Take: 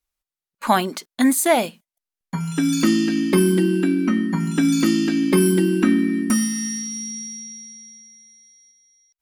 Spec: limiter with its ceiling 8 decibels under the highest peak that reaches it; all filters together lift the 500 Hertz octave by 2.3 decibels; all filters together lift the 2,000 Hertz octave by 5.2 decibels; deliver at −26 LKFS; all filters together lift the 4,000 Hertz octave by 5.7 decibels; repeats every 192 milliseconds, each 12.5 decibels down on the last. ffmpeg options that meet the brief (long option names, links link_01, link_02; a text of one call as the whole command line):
ffmpeg -i in.wav -af "equalizer=frequency=500:width_type=o:gain=3.5,equalizer=frequency=2000:width_type=o:gain=4.5,equalizer=frequency=4000:width_type=o:gain=6.5,alimiter=limit=-10dB:level=0:latency=1,aecho=1:1:192|384|576:0.237|0.0569|0.0137,volume=-6dB" out.wav